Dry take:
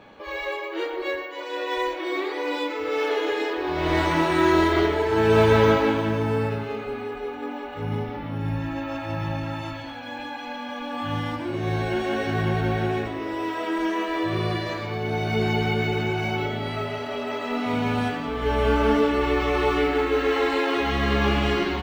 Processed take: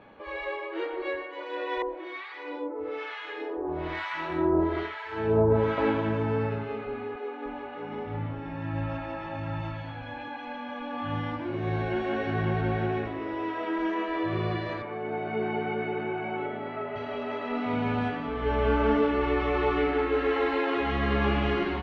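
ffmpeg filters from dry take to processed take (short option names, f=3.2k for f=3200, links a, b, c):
-filter_complex "[0:a]asettb=1/sr,asplit=3[a][b][c];[a]atrim=end=1.824[d];[b]atrim=start=1.82:end=5.78,asetpts=PTS-STARTPTS,afade=t=in:d=0.004:c=qsin,afade=t=out:st=3.956:d=0.004:c=qsin,acrossover=split=1000[e][f];[e]aeval=exprs='val(0)*(1-1/2+1/2*cos(2*PI*1.1*n/s))':c=same[g];[f]aeval=exprs='val(0)*(1-1/2-1/2*cos(2*PI*1.1*n/s))':c=same[h];[g][h]amix=inputs=2:normalize=0[i];[c]atrim=start=5.776[j];[d][i]acrossfade=d=0.004:c1=hsin:c2=qsin[k];[k][j]acrossfade=d=0.004:c1=qsin:c2=hsin,asettb=1/sr,asplit=3[l][m][n];[l]atrim=end=7.164[o];[m]atrim=start=7.16:end=10.28,asetpts=PTS-STARTPTS,afade=t=in:d=0.004:c=qsin,afade=t=out:st=3.116:d=0.004:c=qsin,acrossover=split=200[p][q];[p]adelay=290[r];[r][q]amix=inputs=2:normalize=0,atrim=end_sample=137592[s];[n]atrim=start=10.276[t];[o][s]acrossfade=d=0.004:c1=hsin:c2=qsin[u];[u][t]acrossfade=d=0.004:c1=qsin:c2=hsin,asettb=1/sr,asplit=3[v][w][x];[v]atrim=end=14.824[y];[w]atrim=start=14.82:end=16.96,asetpts=PTS-STARTPTS,afade=t=in:d=0.004:c=qsin,afade=t=out:st=2.136:d=0.004:c=qsin,highpass=240,lowpass=2.1k[z];[x]atrim=start=16.956[aa];[y][z]acrossfade=d=0.004:c1=hsin:c2=qsin[ab];[ab][aa]acrossfade=d=0.004:c1=qsin:c2=hsin,lowpass=2.7k,volume=-3.5dB"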